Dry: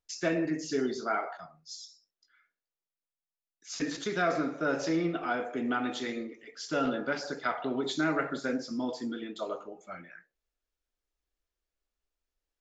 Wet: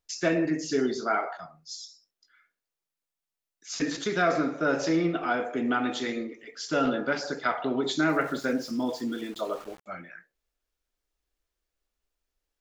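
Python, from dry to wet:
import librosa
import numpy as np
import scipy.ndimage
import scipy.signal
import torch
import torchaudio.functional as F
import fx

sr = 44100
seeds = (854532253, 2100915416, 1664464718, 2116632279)

y = fx.sample_gate(x, sr, floor_db=-48.5, at=(8.09, 9.86))
y = y * librosa.db_to_amplitude(4.0)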